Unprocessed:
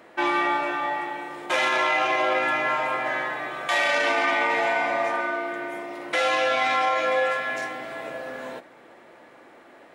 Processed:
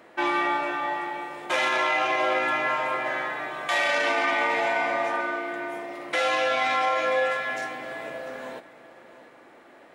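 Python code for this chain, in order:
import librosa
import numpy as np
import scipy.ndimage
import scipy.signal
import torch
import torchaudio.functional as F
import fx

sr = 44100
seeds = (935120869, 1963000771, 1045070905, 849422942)

y = x + 10.0 ** (-17.0 / 20.0) * np.pad(x, (int(696 * sr / 1000.0), 0))[:len(x)]
y = y * librosa.db_to_amplitude(-1.5)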